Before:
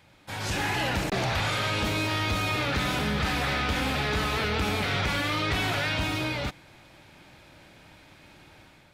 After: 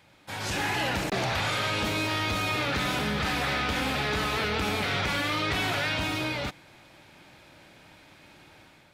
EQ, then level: low shelf 98 Hz -7.5 dB; 0.0 dB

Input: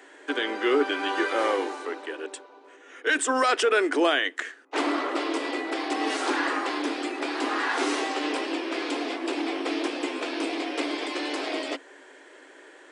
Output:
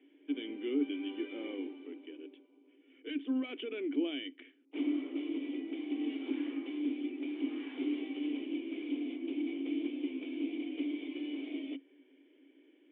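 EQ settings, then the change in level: vocal tract filter i; air absorption 67 m; 0.0 dB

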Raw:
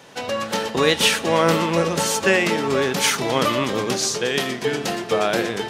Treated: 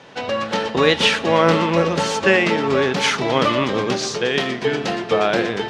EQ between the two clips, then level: LPF 4300 Hz 12 dB/oct; +2.5 dB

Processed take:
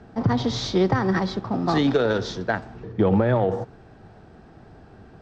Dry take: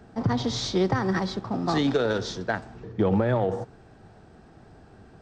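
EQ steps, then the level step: air absorption 79 m; +3.5 dB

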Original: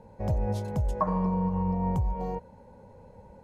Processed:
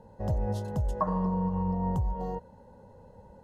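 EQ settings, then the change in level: Butterworth band-stop 2300 Hz, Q 4.4; -1.5 dB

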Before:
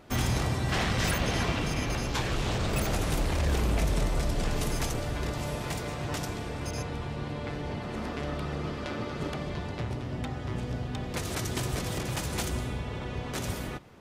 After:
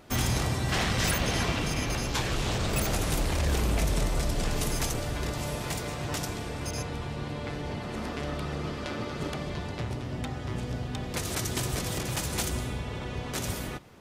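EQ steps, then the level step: high shelf 4300 Hz +5.5 dB; 0.0 dB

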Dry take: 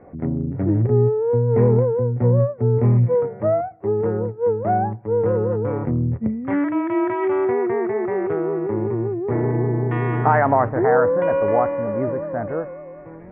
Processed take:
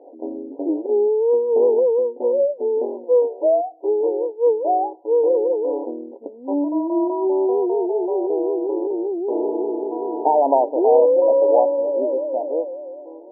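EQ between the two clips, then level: brick-wall FIR band-pass 260–1000 Hz; air absorption 400 m; bell 550 Hz +5.5 dB 0.77 oct; 0.0 dB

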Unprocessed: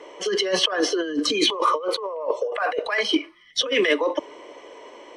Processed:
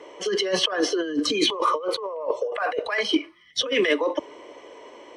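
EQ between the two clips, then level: HPF 62 Hz; low shelf 160 Hz +8.5 dB; -2.0 dB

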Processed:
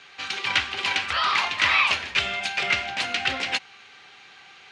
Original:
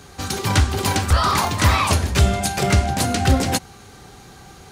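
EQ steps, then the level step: band-pass 2600 Hz, Q 2.2; air absorption 84 m; +8.0 dB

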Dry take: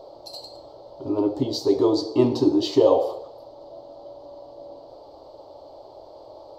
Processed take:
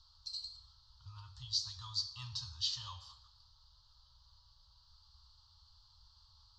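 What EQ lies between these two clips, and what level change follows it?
inverse Chebyshev band-stop 180–740 Hz, stop band 50 dB; LPF 6400 Hz 24 dB/oct; fixed phaser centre 910 Hz, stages 4; 0.0 dB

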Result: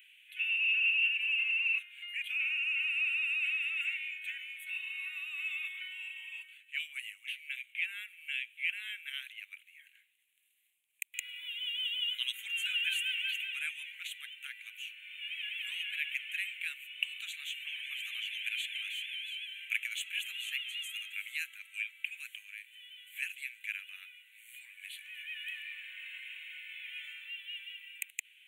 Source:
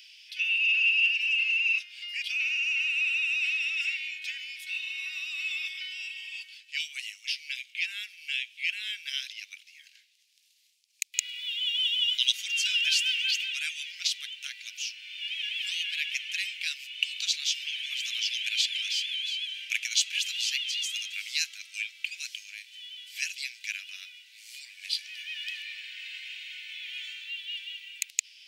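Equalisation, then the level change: Butterworth band-stop 5100 Hz, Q 0.69; 0.0 dB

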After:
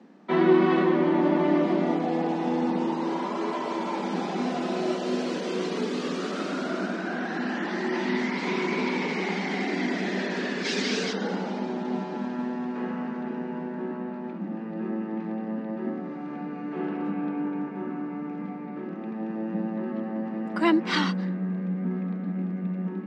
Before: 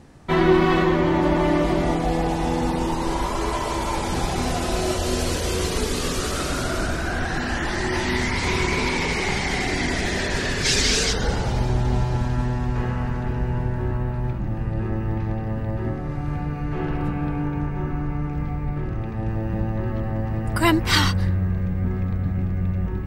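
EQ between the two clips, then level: steep high-pass 180 Hz 96 dB/oct; air absorption 150 m; low shelf 230 Hz +12 dB; -5.0 dB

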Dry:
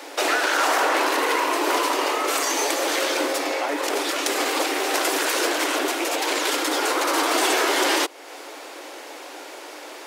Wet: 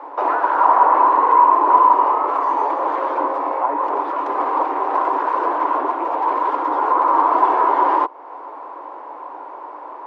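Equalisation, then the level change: synth low-pass 1000 Hz, resonance Q 8.4; -2.5 dB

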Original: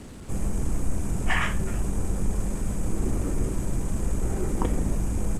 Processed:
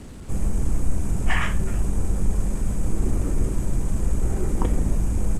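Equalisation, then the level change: low shelf 110 Hz +5.5 dB; 0.0 dB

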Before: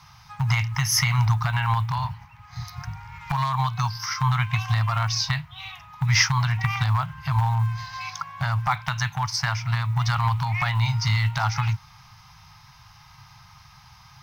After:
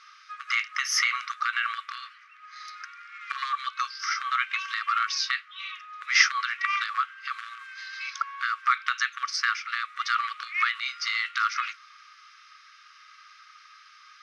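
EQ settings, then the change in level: brick-wall FIR band-pass 1100–12000 Hz; air absorption 64 m; tilt -2 dB/oct; +5.0 dB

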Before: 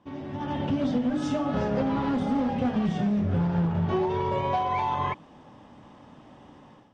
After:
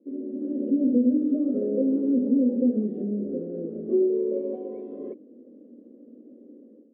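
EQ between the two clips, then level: elliptic band-pass 230–510 Hz, stop band 40 dB; +6.0 dB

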